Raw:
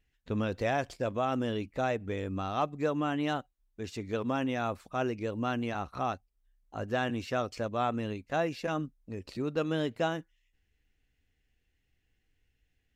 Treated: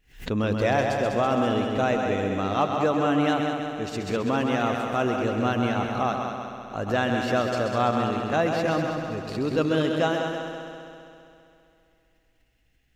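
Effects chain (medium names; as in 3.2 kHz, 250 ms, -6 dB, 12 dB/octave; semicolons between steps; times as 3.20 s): peaking EQ 79 Hz -11.5 dB 0.32 oct; multi-head delay 66 ms, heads second and third, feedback 65%, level -6.5 dB; swell ahead of each attack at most 150 dB/s; trim +6 dB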